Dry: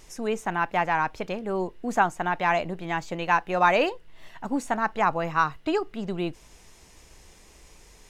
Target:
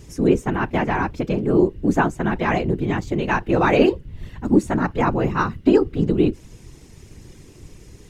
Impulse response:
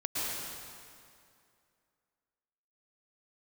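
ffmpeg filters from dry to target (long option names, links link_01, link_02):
-af "afftfilt=real='hypot(re,im)*cos(2*PI*random(0))':imag='hypot(re,im)*sin(2*PI*random(1))':win_size=512:overlap=0.75,lowshelf=frequency=500:width_type=q:width=1.5:gain=9.5,volume=7.5dB"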